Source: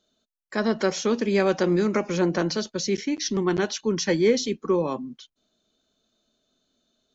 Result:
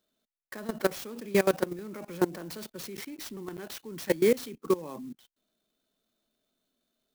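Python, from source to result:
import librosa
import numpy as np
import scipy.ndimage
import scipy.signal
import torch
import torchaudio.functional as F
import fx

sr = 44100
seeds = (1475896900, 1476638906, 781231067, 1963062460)

y = fx.peak_eq(x, sr, hz=71.0, db=-11.0, octaves=0.58)
y = fx.level_steps(y, sr, step_db=20)
y = fx.clock_jitter(y, sr, seeds[0], jitter_ms=0.036)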